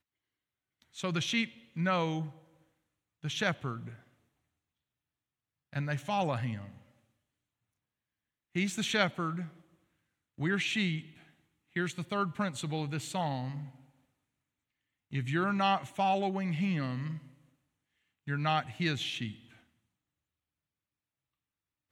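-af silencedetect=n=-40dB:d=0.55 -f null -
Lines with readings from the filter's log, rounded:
silence_start: 0.00
silence_end: 0.97 | silence_duration: 0.97
silence_start: 2.29
silence_end: 3.24 | silence_duration: 0.95
silence_start: 3.92
silence_end: 5.73 | silence_duration: 1.81
silence_start: 6.69
silence_end: 8.55 | silence_duration: 1.87
silence_start: 9.47
silence_end: 10.39 | silence_duration: 0.91
silence_start: 11.01
silence_end: 11.76 | silence_duration: 0.75
silence_start: 13.68
silence_end: 15.13 | silence_duration: 1.45
silence_start: 17.18
silence_end: 18.27 | silence_duration: 1.09
silence_start: 19.32
silence_end: 21.92 | silence_duration: 2.59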